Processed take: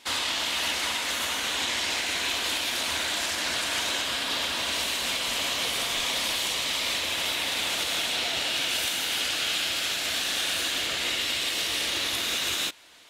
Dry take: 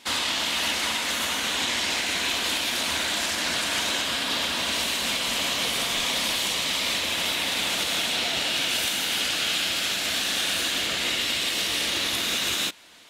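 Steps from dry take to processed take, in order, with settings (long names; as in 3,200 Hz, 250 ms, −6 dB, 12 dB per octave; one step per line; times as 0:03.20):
parametric band 200 Hz −6.5 dB 0.75 octaves
level −2 dB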